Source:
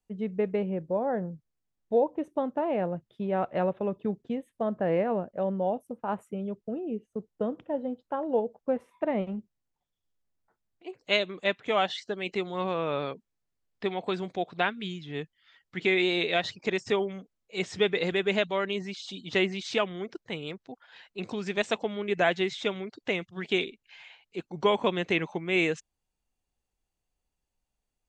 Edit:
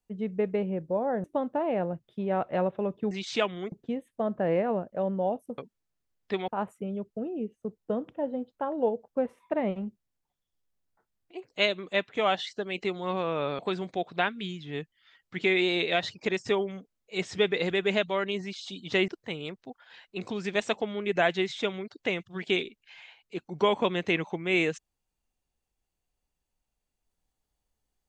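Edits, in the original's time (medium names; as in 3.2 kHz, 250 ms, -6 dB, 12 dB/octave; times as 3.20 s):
1.24–2.26 s: delete
13.10–14.00 s: move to 5.99 s
19.49–20.10 s: move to 4.13 s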